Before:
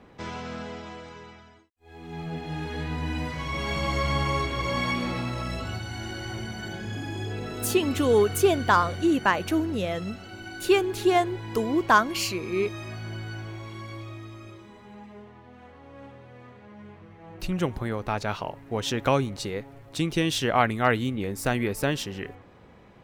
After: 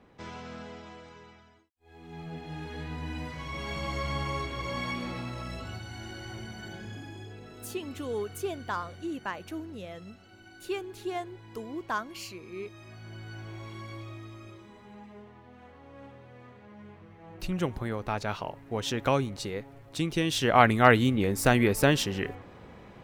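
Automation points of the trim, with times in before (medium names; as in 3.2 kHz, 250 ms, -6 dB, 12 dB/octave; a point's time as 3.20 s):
6.82 s -6.5 dB
7.38 s -13 dB
12.73 s -13 dB
13.63 s -3 dB
20.28 s -3 dB
20.68 s +3.5 dB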